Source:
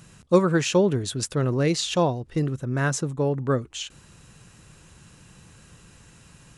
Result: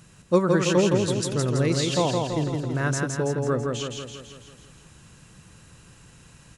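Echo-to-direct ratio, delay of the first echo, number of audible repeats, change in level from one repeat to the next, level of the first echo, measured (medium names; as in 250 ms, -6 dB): -2.0 dB, 165 ms, 7, -5.0 dB, -3.5 dB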